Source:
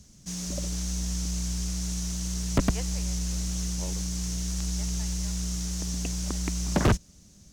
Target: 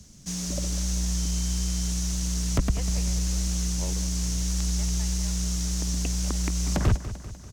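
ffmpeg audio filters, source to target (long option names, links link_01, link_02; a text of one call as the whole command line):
ffmpeg -i in.wav -filter_complex "[0:a]acrossover=split=130[link_01][link_02];[link_02]acompressor=threshold=-31dB:ratio=5[link_03];[link_01][link_03]amix=inputs=2:normalize=0,aecho=1:1:196|392|588|784|980|1176:0.224|0.121|0.0653|0.0353|0.019|0.0103,asettb=1/sr,asplit=3[link_04][link_05][link_06];[link_04]atrim=end=1.174[link_07];[link_05]atrim=start=1.17:end=1.91,asetpts=PTS-STARTPTS,afade=type=in:duration=0.004:curve=qsin,afade=type=out:start_time=0.736:duration=0.004:curve=qsin,aeval=exprs='val(0)+0.00224*sin(2*PI*3100*n/s)':channel_layout=same[link_08];[link_06]atrim=start=1.906[link_09];[link_07][link_08]acrossfade=duration=0.004:curve1=hsin:curve2=qsin[link_10];[link_10][link_09]acrossfade=duration=0.004:curve1=qsin:curve2=hsin,volume=3.5dB" out.wav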